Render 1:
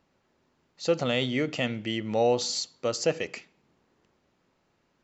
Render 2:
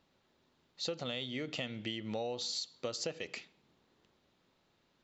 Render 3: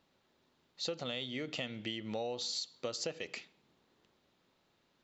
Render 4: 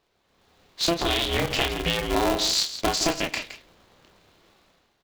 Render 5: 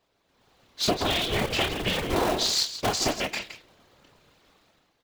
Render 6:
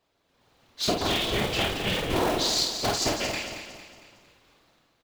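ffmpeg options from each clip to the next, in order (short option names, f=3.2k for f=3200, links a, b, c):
-af "equalizer=f=3.7k:t=o:w=0.58:g=9,acompressor=threshold=-31dB:ratio=10,volume=-3.5dB"
-af "lowshelf=f=130:g=-4"
-filter_complex "[0:a]dynaudnorm=f=120:g=7:m=12dB,asplit=2[a][b];[b]aecho=0:1:29.15|166.2:0.562|0.282[c];[a][c]amix=inputs=2:normalize=0,aeval=exprs='val(0)*sgn(sin(2*PI*170*n/s))':c=same,volume=1.5dB"
-af "afftfilt=real='hypot(re,im)*cos(2*PI*random(0))':imag='hypot(re,im)*sin(2*PI*random(1))':win_size=512:overlap=0.75,volume=4.5dB"
-filter_complex "[0:a]asplit=2[a][b];[b]adelay=49,volume=-5dB[c];[a][c]amix=inputs=2:normalize=0,aecho=1:1:228|456|684|912|1140:0.355|0.156|0.0687|0.0302|0.0133,volume=-2dB"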